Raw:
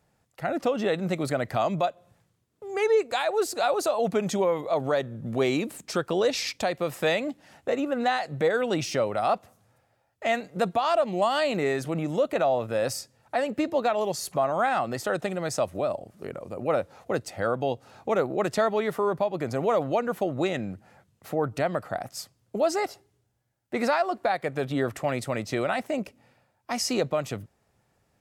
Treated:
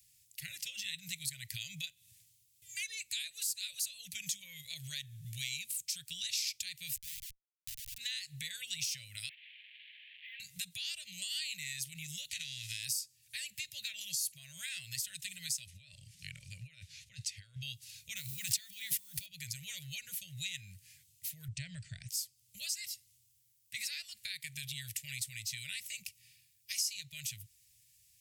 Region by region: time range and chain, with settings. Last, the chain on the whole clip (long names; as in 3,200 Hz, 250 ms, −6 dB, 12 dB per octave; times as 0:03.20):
0:06.96–0:07.98: high-pass filter 1,100 Hz 6 dB per octave + downward compressor, threshold −34 dBFS + comparator with hysteresis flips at −36 dBFS
0:09.29–0:10.40: linear delta modulator 16 kbit/s, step −34.5 dBFS + Butterworth high-pass 1,600 Hz 96 dB per octave + parametric band 2,500 Hz −7 dB 2.7 octaves
0:12.28–0:12.83: spectral envelope flattened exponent 0.6 + low-pass filter 6,100 Hz + downward compressor 4 to 1, threshold −27 dBFS
0:15.66–0:17.63: compressor whose output falls as the input rises −34 dBFS + Bessel low-pass filter 4,600 Hz
0:18.17–0:19.28: one scale factor per block 7 bits + background raised ahead of every attack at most 22 dB per second
0:21.48–0:22.09: Butterworth low-pass 8,800 Hz 72 dB per octave + tilt shelving filter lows +7.5 dB, about 1,300 Hz
whole clip: inverse Chebyshev band-stop filter 240–1,300 Hz, stop band 40 dB; first-order pre-emphasis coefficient 0.9; downward compressor 2.5 to 1, threshold −53 dBFS; level +13 dB